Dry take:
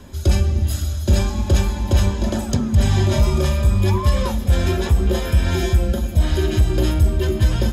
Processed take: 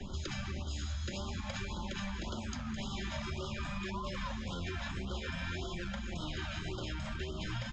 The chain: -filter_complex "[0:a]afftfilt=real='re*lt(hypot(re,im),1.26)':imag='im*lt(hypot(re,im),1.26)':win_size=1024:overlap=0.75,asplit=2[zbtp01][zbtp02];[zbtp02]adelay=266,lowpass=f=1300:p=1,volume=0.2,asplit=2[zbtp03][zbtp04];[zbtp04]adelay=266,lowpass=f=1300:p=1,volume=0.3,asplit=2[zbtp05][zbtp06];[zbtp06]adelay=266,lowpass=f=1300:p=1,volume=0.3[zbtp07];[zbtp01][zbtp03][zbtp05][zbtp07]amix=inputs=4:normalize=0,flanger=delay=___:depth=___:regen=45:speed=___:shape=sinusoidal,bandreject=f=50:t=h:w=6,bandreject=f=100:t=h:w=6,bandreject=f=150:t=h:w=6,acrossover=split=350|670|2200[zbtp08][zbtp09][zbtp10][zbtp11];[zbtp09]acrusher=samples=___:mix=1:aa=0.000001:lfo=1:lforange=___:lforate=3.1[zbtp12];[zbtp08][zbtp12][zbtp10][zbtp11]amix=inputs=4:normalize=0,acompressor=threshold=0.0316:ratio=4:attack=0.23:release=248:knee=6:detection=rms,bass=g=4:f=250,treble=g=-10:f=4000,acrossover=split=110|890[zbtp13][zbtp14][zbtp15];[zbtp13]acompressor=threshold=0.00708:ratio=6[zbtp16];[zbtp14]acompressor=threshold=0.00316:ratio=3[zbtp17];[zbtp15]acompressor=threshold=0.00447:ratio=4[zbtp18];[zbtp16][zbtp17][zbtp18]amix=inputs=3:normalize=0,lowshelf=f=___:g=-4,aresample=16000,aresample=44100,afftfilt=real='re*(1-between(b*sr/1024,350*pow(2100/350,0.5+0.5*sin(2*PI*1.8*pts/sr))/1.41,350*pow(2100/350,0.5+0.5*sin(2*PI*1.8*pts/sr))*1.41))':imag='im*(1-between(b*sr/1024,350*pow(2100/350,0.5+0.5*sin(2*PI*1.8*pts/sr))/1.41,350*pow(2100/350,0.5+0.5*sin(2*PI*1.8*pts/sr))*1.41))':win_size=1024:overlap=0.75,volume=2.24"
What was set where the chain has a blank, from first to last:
5, 9.9, 0.5, 31, 31, 480